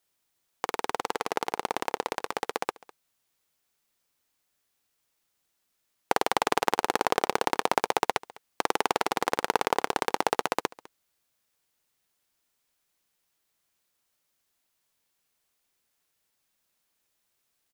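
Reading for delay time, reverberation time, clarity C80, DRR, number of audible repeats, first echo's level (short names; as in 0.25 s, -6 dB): 0.203 s, none, none, none, 1, -22.0 dB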